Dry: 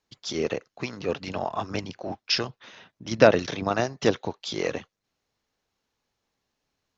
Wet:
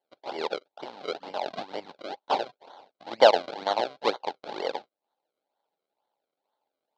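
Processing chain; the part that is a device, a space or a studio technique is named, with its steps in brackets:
circuit-bent sampling toy (sample-and-hold swept by an LFO 34×, swing 100% 2.1 Hz; loudspeaker in its box 530–4,400 Hz, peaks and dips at 580 Hz +4 dB, 840 Hz +9 dB, 1,200 Hz −5 dB, 1,800 Hz −7 dB, 2,600 Hz −4 dB, 4,100 Hz +6 dB)
level −1 dB

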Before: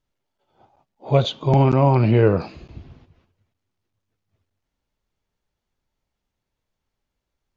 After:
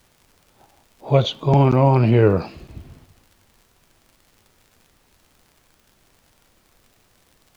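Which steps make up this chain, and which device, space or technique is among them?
vinyl LP (tape wow and flutter; surface crackle; pink noise bed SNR 37 dB)
level +1 dB

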